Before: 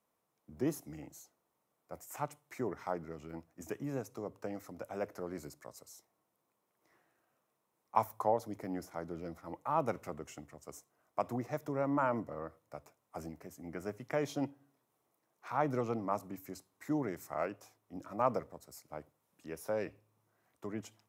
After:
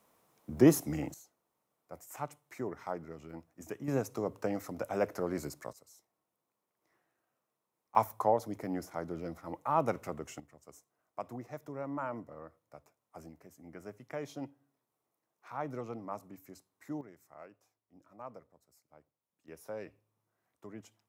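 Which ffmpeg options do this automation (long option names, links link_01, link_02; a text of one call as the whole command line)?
ffmpeg -i in.wav -af "asetnsamples=nb_out_samples=441:pad=0,asendcmd='1.14 volume volume -1dB;3.88 volume volume 7dB;5.73 volume volume -5dB;7.95 volume volume 3dB;10.4 volume volume -6dB;17.01 volume volume -15.5dB;19.48 volume volume -6.5dB',volume=12dB" out.wav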